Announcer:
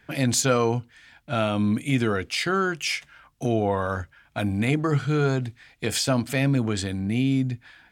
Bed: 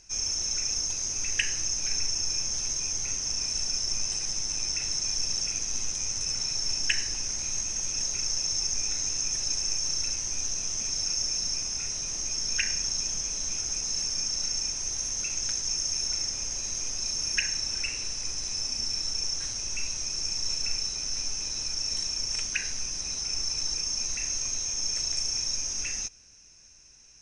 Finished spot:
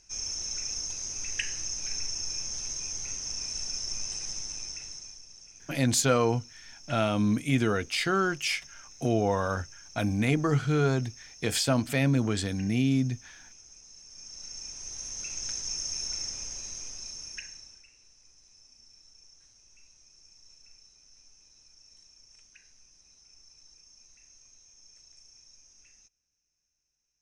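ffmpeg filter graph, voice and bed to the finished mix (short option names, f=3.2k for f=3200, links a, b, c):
-filter_complex "[0:a]adelay=5600,volume=-2.5dB[a];[1:a]volume=12dB,afade=t=out:st=4.31:d=0.91:silence=0.149624,afade=t=in:st=14.05:d=1.48:silence=0.141254,afade=t=out:st=16.28:d=1.56:silence=0.0794328[b];[a][b]amix=inputs=2:normalize=0"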